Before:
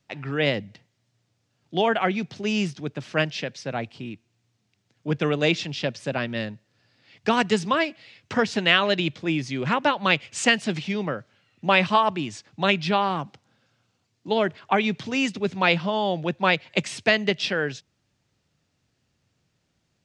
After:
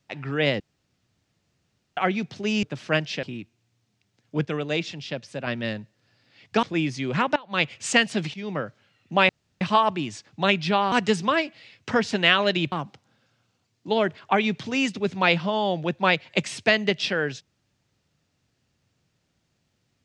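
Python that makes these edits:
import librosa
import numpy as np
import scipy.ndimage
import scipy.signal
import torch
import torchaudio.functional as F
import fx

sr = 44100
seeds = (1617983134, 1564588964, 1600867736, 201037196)

y = fx.edit(x, sr, fx.room_tone_fill(start_s=0.6, length_s=1.37),
    fx.cut(start_s=2.63, length_s=0.25),
    fx.cut(start_s=3.48, length_s=0.47),
    fx.clip_gain(start_s=5.17, length_s=1.02, db=-5.0),
    fx.move(start_s=7.35, length_s=1.8, to_s=13.12),
    fx.fade_in_from(start_s=9.88, length_s=0.28, curve='qua', floor_db=-20.5),
    fx.fade_in_from(start_s=10.86, length_s=0.26, floor_db=-14.0),
    fx.insert_room_tone(at_s=11.81, length_s=0.32), tone=tone)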